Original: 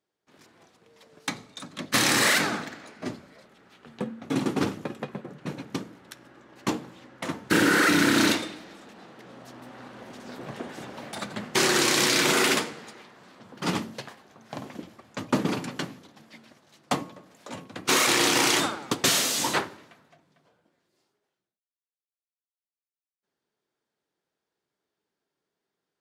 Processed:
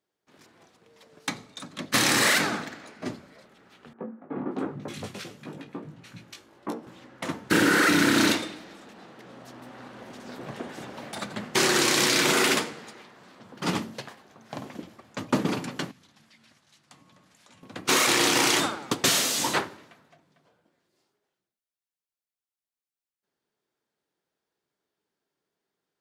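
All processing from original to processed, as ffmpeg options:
-filter_complex "[0:a]asettb=1/sr,asplit=3[a][b][c];[a]atrim=end=3.934[d];[b]atrim=start=3.93:end=6.87,asetpts=PTS-STARTPTS,afade=t=in:d=0.004:c=qsin,afade=t=out:st=2.936:d=0.004:c=qsin,flanger=delay=17:depth=3.6:speed=1.1,acrossover=split=170|1600[e][f][g];[e]adelay=390[h];[g]adelay=580[i];[h][f][i]amix=inputs=3:normalize=0,atrim=end_sample=129654[j];[c]atrim=start=6.866[k];[d][j]acrossfade=d=0.004:c1=hsin:c2=qsin[l];[l][k]acrossfade=d=0.004:c1=qsin:c2=hsin,asettb=1/sr,asplit=3[m][n][o];[m]atrim=end=15.914[p];[n]atrim=start=15.91:end=17.63,asetpts=PTS-STARTPTS,afade=t=in:d=0.004:c=qsin,afade=t=out:st=1.716:d=0.004:c=qsin,lowpass=f=12k:w=0.5412,lowpass=f=12k:w=1.3066,equalizer=f=440:t=o:w=2.4:g=-12,acompressor=threshold=-53dB:ratio=5:attack=3.2:release=140:knee=1:detection=peak[q];[o]atrim=start=17.626[r];[p][q]acrossfade=d=0.004:c1=hsin:c2=qsin[s];[s][r]acrossfade=d=0.004:c1=qsin:c2=hsin"

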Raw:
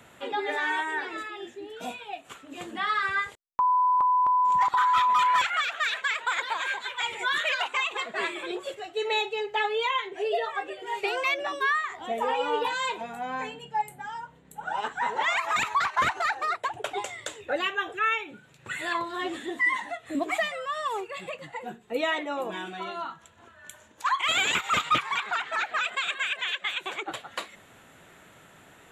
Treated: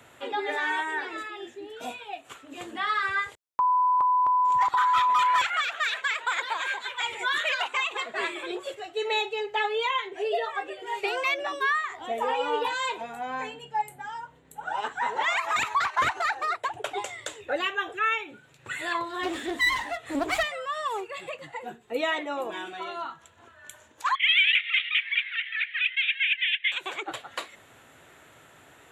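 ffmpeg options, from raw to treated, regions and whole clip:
-filter_complex "[0:a]asettb=1/sr,asplit=3[a][b][c];[a]atrim=end=19.234[d];[b]atrim=start=19.23:end=20.43,asetpts=PTS-STARTPTS,afade=t=in:d=0.004:c=qsin,afade=t=out:st=1.196:d=0.004:c=qsin,acontrast=26,aeval=exprs='clip(val(0),-1,0.0211)':c=same[e];[c]atrim=start=20.426[f];[d][e]acrossfade=d=0.004:c1=hsin:c2=qsin[g];[g][f]acrossfade=d=0.004:c1=qsin:c2=hsin,asettb=1/sr,asplit=3[h][i][j];[h]atrim=end=24.154[k];[i]atrim=start=24.15:end=26.72,asetpts=PTS-STARTPTS,afade=t=in:d=0.004:c=qsin,afade=t=out:st=2.566:d=0.004:c=qsin,asuperpass=centerf=2500:order=8:qfactor=1.6,acontrast=54[l];[j]atrim=start=26.716[m];[k][l]acrossfade=d=0.004:c1=hsin:c2=qsin[n];[n][m]acrossfade=d=0.004:c1=qsin:c2=hsin,highpass=50,equalizer=f=190:t=o:w=0.29:g=-12.5"

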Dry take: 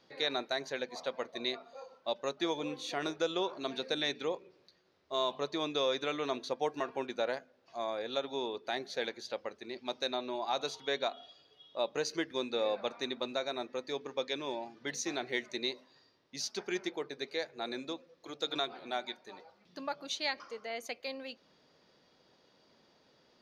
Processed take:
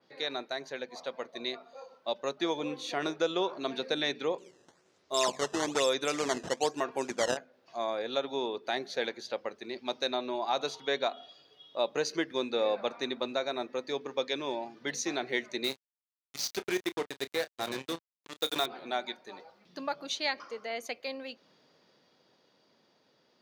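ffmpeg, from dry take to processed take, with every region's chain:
-filter_complex "[0:a]asettb=1/sr,asplit=3[a][b][c];[a]atrim=end=4.384[d];[b]atrim=start=4.38:end=7.37,asetpts=PTS-STARTPTS,afade=t=in:d=0.004:c=qsin,afade=t=out:st=2.986:d=0.004:c=qsin,acrusher=samples=11:mix=1:aa=0.000001:lfo=1:lforange=17.6:lforate=1.1,lowpass=f=6.8k:t=q:w=2.7[e];[c]atrim=start=7.366[f];[d][e]acrossfade=d=0.004:c1=hsin:c2=qsin[g];[g][f]acrossfade=d=0.004:c1=qsin:c2=hsin,asettb=1/sr,asplit=3[h][i][j];[h]atrim=end=15.644[k];[i]atrim=start=15.64:end=18.66,asetpts=PTS-STARTPTS,afade=t=in:d=0.004:c=qsin,afade=t=out:st=3.016:d=0.004:c=qsin,acrusher=bits=5:mix=0:aa=0.5,asplit=2[l][m];[m]adelay=30,volume=-13.5dB[n];[l][n]amix=inputs=2:normalize=0,atrim=end_sample=133182[o];[j]atrim=start=18.656[p];[k][o]acrossfade=d=0.004:c1=hsin:c2=qsin[q];[q][p]acrossfade=d=0.004:c1=qsin:c2=hsin,highpass=110,dynaudnorm=f=190:g=21:m=5dB,adynamicequalizer=threshold=0.00631:dfrequency=3000:dqfactor=0.7:tfrequency=3000:tqfactor=0.7:attack=5:release=100:ratio=0.375:range=1.5:mode=cutabove:tftype=highshelf,volume=-1.5dB"

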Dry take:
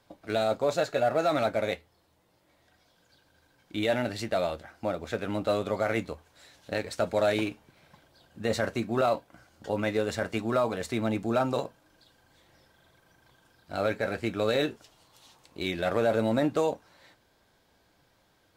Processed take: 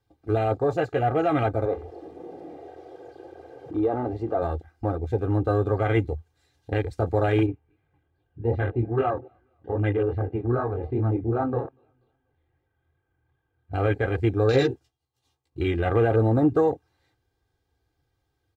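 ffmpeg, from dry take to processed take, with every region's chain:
-filter_complex "[0:a]asettb=1/sr,asplit=3[a][b][c];[a]atrim=end=1.654[d];[b]atrim=start=1.65:end=4.42,asetpts=PTS-STARTPTS,afade=t=in:d=0.004:c=qsin,afade=t=out:st=2.766:d=0.004:c=qsin,aeval=exprs='val(0)+0.5*0.0237*sgn(val(0))':c=same,bandpass=f=620:t=q:w=0.69[e];[c]atrim=start=4.416[f];[d][e]acrossfade=d=0.004:c1=hsin:c2=qsin[g];[g][f]acrossfade=d=0.004:c1=qsin:c2=hsin,asettb=1/sr,asplit=3[h][i][j];[h]atrim=end=7.464[k];[i]atrim=start=7.46:end=13.73,asetpts=PTS-STARTPTS,afade=t=in:d=0.004:c=qsin,afade=t=out:st=6.266:d=0.004:c=qsin,lowpass=f=2.8k:w=0.5412,lowpass=f=2.8k:w=1.3066,aecho=1:1:241|482|723:0.0944|0.0415|0.0183,atrim=end_sample=276507,flanger=delay=19:depth=7:speed=2.5[l];[j]atrim=start=13.726[m];[k][l]acrossfade=d=0.004:c1=hsin:c2=qsin[n];[n][m]acrossfade=d=0.004:c1=qsin:c2=hsin,asettb=1/sr,asplit=3[o][p][q];[o]atrim=end=14.524[r];[p]atrim=start=14.52:end=15.61,asetpts=PTS-STARTPTS,afade=t=in:d=0.004:c=qsin,afade=t=out:st=1.086:d=0.004:c=qsin,agate=range=-33dB:threshold=-52dB:ratio=3:release=100:detection=peak,asplit=2[s][t];[t]adelay=15,volume=-3dB[u];[s][u]amix=inputs=2:normalize=0,atrim=end_sample=48069[v];[q]atrim=start=15.606[w];[r][v]acrossfade=d=0.004:c1=hsin:c2=qsin[x];[x][w]acrossfade=d=0.004:c1=qsin:c2=hsin,afwtdn=0.0178,equalizer=f=82:w=0.4:g=14.5,aecho=1:1:2.5:0.78"

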